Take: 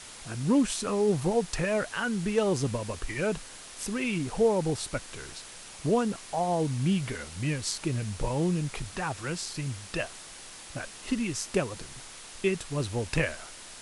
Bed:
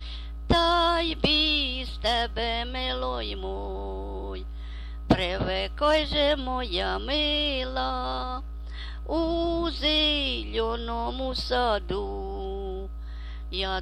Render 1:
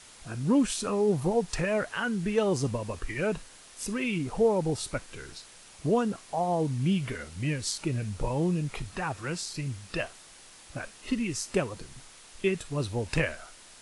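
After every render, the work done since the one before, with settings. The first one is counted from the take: noise print and reduce 6 dB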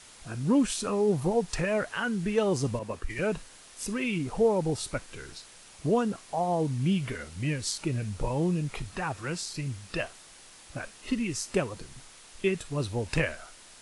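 2.79–3.19 s: three bands expanded up and down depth 100%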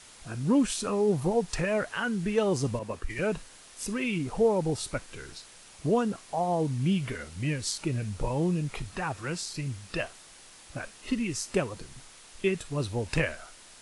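no audible change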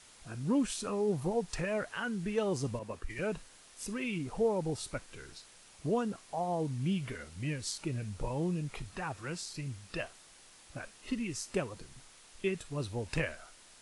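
trim -6 dB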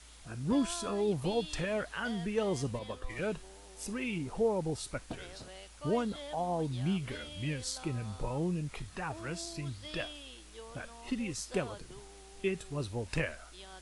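add bed -22 dB

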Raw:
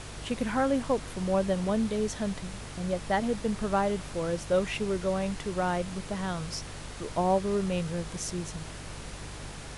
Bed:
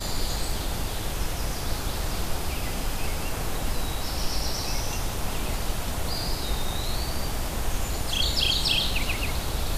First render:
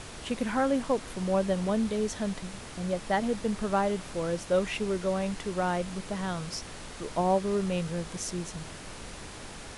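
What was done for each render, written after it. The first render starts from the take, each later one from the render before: de-hum 50 Hz, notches 3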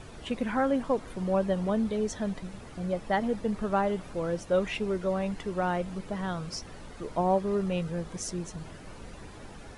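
noise reduction 11 dB, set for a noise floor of -44 dBFS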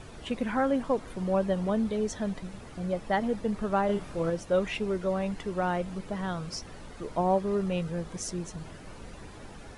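3.86–4.30 s: doubling 30 ms -4 dB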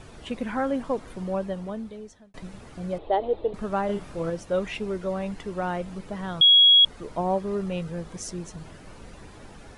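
1.13–2.34 s: fade out; 2.98–3.54 s: FFT filter 100 Hz 0 dB, 210 Hz -18 dB, 330 Hz +8 dB, 750 Hz +5 dB, 1.7 kHz -11 dB, 3.8 kHz +3 dB, 5.5 kHz -28 dB; 6.41–6.85 s: bleep 3.32 kHz -11.5 dBFS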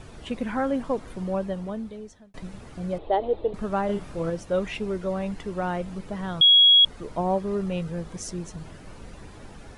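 bass shelf 220 Hz +3 dB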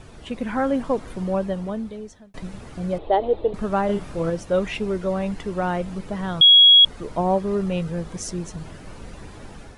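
level rider gain up to 4 dB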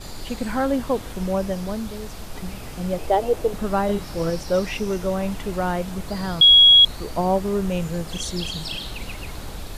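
add bed -7.5 dB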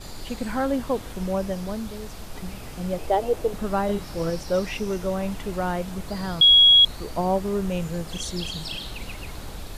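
trim -2.5 dB

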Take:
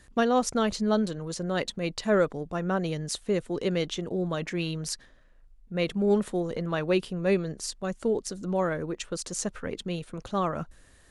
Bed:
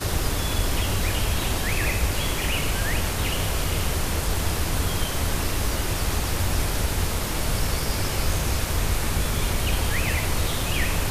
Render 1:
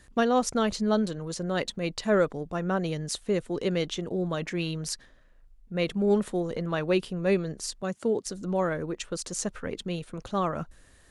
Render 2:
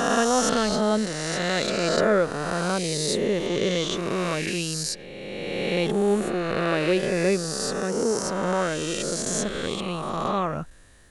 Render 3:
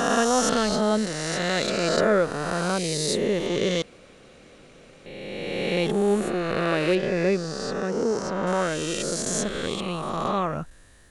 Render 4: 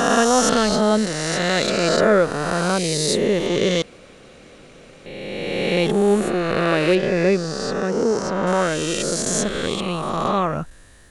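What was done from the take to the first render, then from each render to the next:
7.82–8.26 s: high-pass 92 Hz 24 dB/octave
reverse spectral sustain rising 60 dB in 2.38 s
3.82–5.06 s: room tone; 6.95–8.47 s: distance through air 120 m
trim +5 dB; peak limiter -3 dBFS, peak gain reduction 2 dB

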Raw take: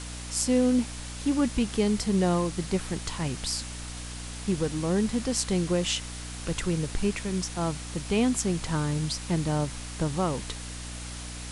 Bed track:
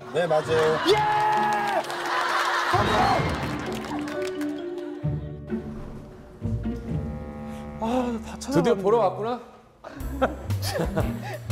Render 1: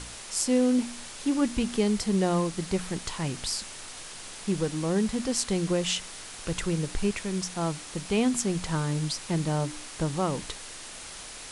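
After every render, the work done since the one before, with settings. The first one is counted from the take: de-hum 60 Hz, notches 5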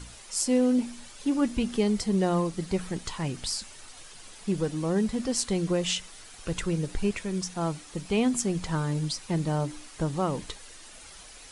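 noise reduction 9 dB, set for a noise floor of -42 dBFS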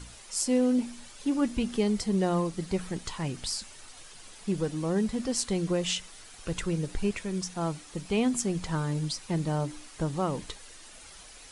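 trim -1.5 dB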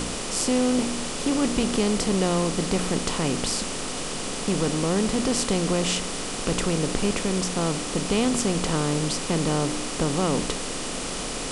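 spectral levelling over time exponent 0.4

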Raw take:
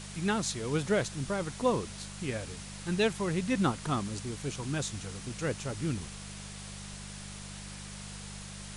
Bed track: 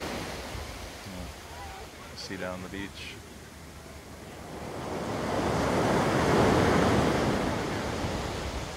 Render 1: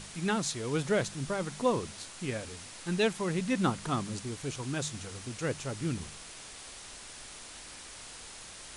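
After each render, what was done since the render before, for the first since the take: de-hum 50 Hz, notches 4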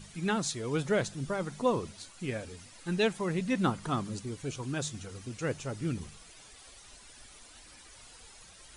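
noise reduction 11 dB, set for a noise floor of -47 dBFS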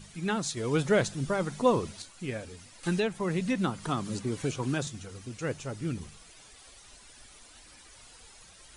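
0.57–2.02 s: gain +4 dB; 2.83–4.87 s: three bands compressed up and down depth 100%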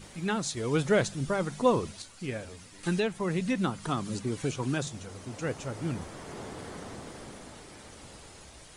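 add bed track -19 dB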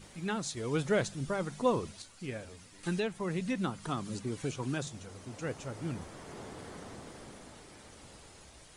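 trim -4.5 dB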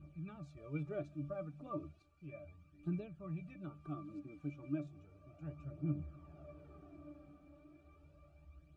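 phaser 0.34 Hz, delay 4.1 ms, feedback 53%; pitch-class resonator D, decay 0.15 s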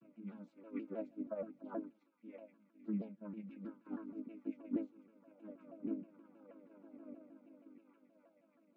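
vocoder on a held chord major triad, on G#3; vibrato with a chosen wave saw down 6.3 Hz, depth 160 cents

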